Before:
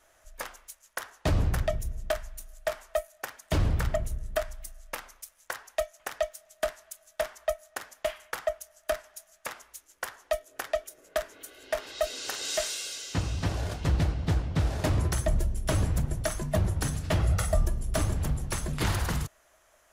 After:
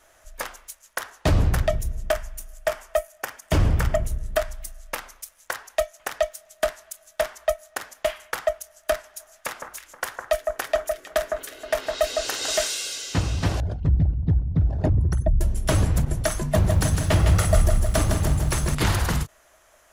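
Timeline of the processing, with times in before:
2.03–4.07 bell 4000 Hz -6.5 dB 0.25 oct
9.04–12.68 echo with dull and thin repeats by turns 0.158 s, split 1700 Hz, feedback 52%, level -4 dB
13.6–15.41 formant sharpening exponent 2
16.4–18.75 lo-fi delay 0.157 s, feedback 55%, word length 9-bit, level -5 dB
whole clip: ending taper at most 540 dB/s; gain +6 dB

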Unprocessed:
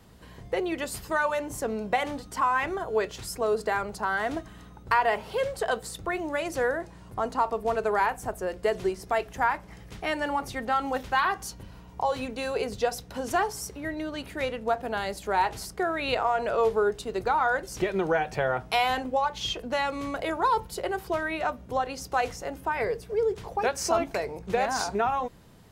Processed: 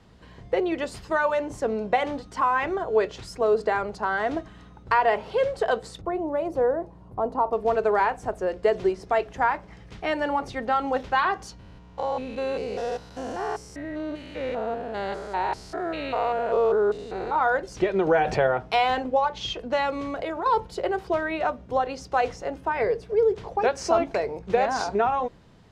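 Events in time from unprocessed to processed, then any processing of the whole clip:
6.01–7.53 band shelf 3500 Hz -13.5 dB 2.9 oct
11.59–17.36 stepped spectrum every 0.2 s
18.07–18.47 fast leveller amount 50%
19.98–20.46 compressor, threshold -29 dBFS
whole clip: LPF 5500 Hz 12 dB/oct; dynamic EQ 480 Hz, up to +5 dB, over -38 dBFS, Q 0.75

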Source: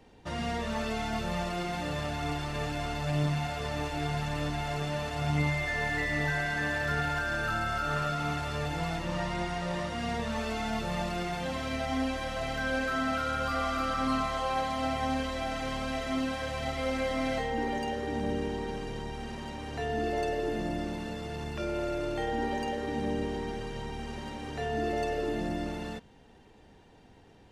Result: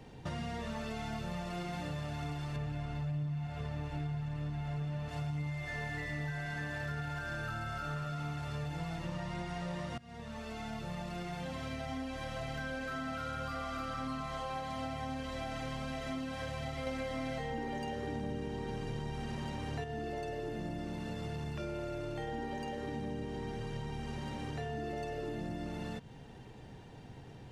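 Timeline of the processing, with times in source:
2.56–5.09 tone controls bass +5 dB, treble -7 dB
9.98–13.33 fade in, from -23 dB
16.87–19.84 gain +6.5 dB
whole clip: bell 130 Hz +11.5 dB 0.65 oct; compressor, threshold -40 dBFS; gain +3 dB

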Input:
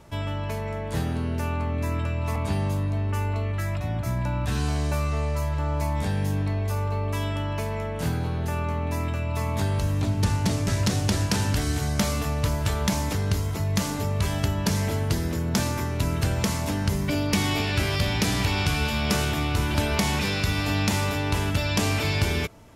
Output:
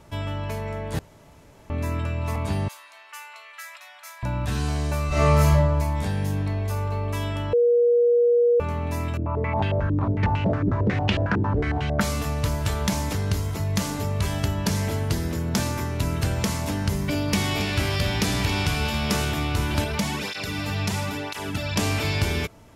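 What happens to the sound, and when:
0.99–1.7 room tone
2.68–4.23 Bessel high-pass 1500 Hz, order 4
5.08–5.5 reverb throw, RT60 0.91 s, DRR -11.5 dB
7.53–8.6 bleep 478 Hz -15 dBFS
9.17–12.01 stepped low-pass 11 Hz 330–2800 Hz
17–19.21 echo 0.276 s -12 dB
19.84–21.76 tape flanging out of phase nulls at 1 Hz, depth 4.1 ms

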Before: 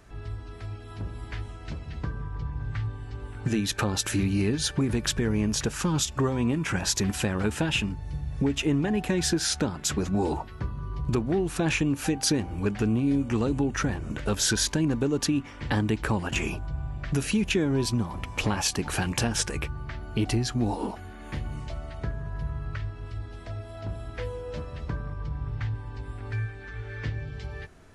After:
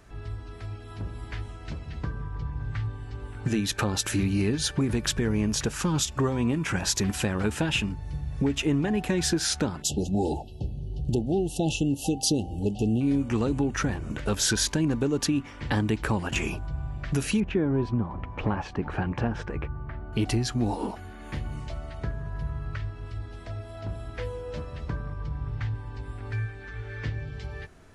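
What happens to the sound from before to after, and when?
9.82–13.01 brick-wall FIR band-stop 880–2600 Hz
17.4–20.13 LPF 1500 Hz

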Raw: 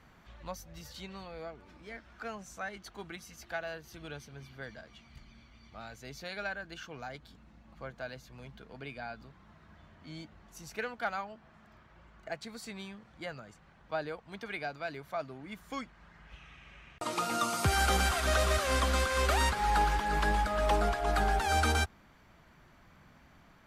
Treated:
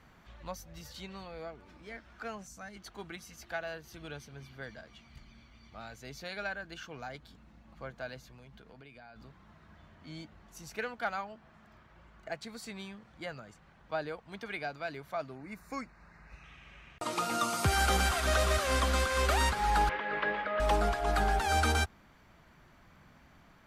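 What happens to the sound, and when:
2.47–2.76 spectral gain 320–4100 Hz -8 dB
8.27–9.16 compressor 5:1, threshold -50 dBFS
15.35–16.44 Butterworth band-stop 3200 Hz, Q 2.7
19.89–20.6 speaker cabinet 280–3100 Hz, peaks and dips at 320 Hz -4 dB, 530 Hz +7 dB, 800 Hz -8 dB, 2000 Hz +5 dB

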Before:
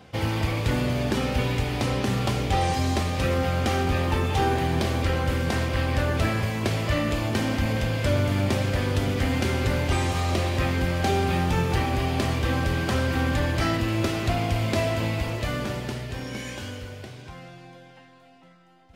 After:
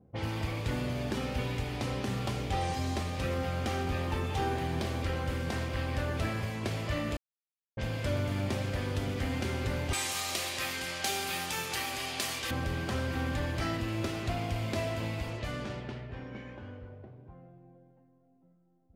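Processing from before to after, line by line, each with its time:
7.17–7.77 mute
9.93–12.51 tilt +4.5 dB/oct
whole clip: low-pass opened by the level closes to 350 Hz, open at -22.5 dBFS; gain -8.5 dB

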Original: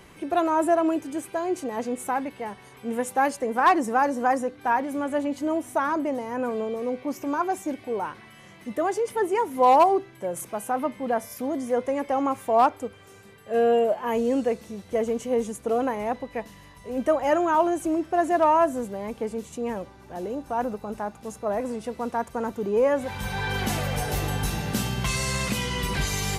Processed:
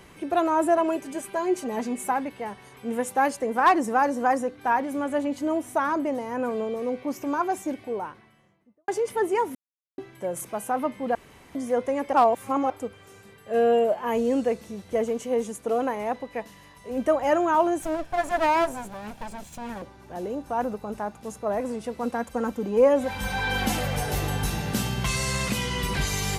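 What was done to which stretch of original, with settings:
0.77–2.12 comb 5 ms, depth 71%
7.6–8.88 studio fade out
9.55–9.98 mute
11.15–11.55 room tone
12.13–12.7 reverse
15.06–16.91 low shelf 140 Hz -8 dB
17.82–19.82 minimum comb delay 1.2 ms
22.03–23.85 comb 3.8 ms, depth 58%

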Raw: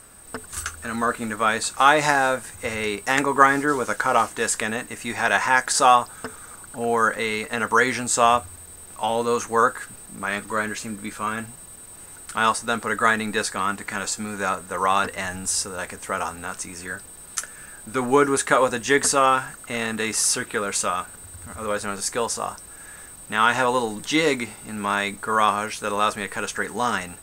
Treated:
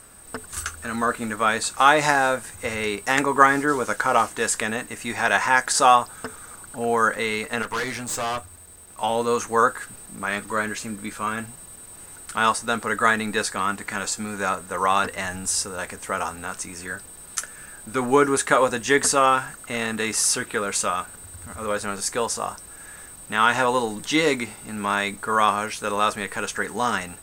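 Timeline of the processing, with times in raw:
7.62–8.98 tube stage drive 23 dB, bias 0.7

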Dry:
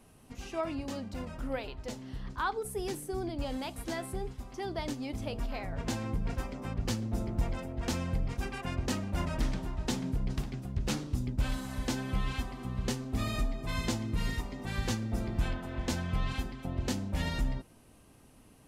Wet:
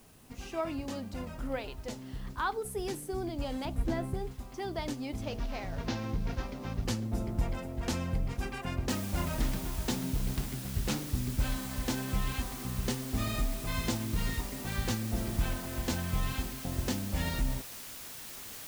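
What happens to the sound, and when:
3.65–4.14 tilt -3 dB/oct
5.22–6.85 CVSD 32 kbps
8.89 noise floor step -64 dB -45 dB

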